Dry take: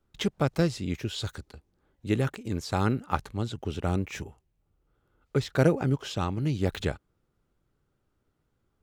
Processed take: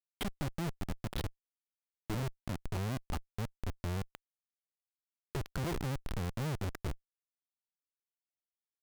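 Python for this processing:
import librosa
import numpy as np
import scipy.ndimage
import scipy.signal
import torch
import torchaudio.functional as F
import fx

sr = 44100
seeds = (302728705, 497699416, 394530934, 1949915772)

y = fx.spec_expand(x, sr, power=1.7)
y = fx.schmitt(y, sr, flips_db=-28.5)
y = F.gain(torch.from_numpy(y), -3.5).numpy()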